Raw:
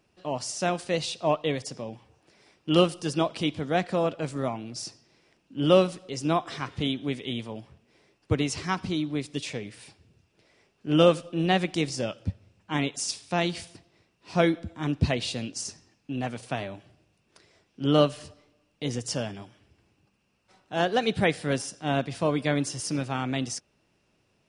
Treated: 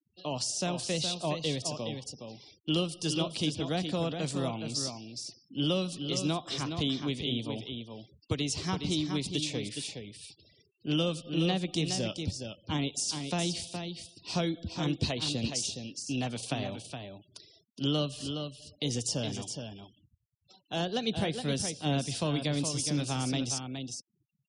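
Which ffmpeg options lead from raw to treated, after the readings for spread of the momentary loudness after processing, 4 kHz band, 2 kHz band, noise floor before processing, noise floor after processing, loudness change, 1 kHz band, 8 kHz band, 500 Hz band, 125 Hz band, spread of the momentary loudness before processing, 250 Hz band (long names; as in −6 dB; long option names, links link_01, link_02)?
11 LU, +1.0 dB, −7.5 dB, −70 dBFS, −76 dBFS, −5.0 dB, −8.5 dB, +2.0 dB, −8.5 dB, −2.0 dB, 15 LU, −4.0 dB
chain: -filter_complex "[0:a]acrossover=split=250|1000[link_01][link_02][link_03];[link_01]acompressor=threshold=-31dB:ratio=4[link_04];[link_02]acompressor=threshold=-35dB:ratio=4[link_05];[link_03]acompressor=threshold=-42dB:ratio=4[link_06];[link_04][link_05][link_06]amix=inputs=3:normalize=0,highshelf=frequency=2600:width_type=q:width=1.5:gain=8.5,asplit=2[link_07][link_08];[link_08]aecho=0:1:417:0.447[link_09];[link_07][link_09]amix=inputs=2:normalize=0,afftfilt=real='re*gte(hypot(re,im),0.00251)':imag='im*gte(hypot(re,im),0.00251)':win_size=1024:overlap=0.75"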